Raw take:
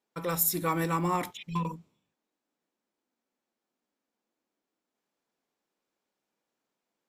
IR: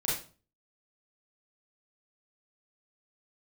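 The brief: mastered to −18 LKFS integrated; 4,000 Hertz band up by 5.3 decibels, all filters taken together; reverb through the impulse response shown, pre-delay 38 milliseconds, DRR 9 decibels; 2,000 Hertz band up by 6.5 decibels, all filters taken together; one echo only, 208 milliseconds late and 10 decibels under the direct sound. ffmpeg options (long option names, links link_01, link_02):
-filter_complex "[0:a]equalizer=frequency=2000:width_type=o:gain=7,equalizer=frequency=4000:width_type=o:gain=5,aecho=1:1:208:0.316,asplit=2[link_01][link_02];[1:a]atrim=start_sample=2205,adelay=38[link_03];[link_02][link_03]afir=irnorm=-1:irlink=0,volume=-16dB[link_04];[link_01][link_04]amix=inputs=2:normalize=0,volume=9.5dB"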